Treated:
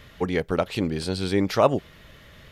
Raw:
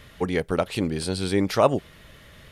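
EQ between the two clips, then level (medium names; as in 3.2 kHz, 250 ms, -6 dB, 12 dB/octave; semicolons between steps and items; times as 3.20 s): peaking EQ 9.5 kHz -9 dB 0.43 oct; 0.0 dB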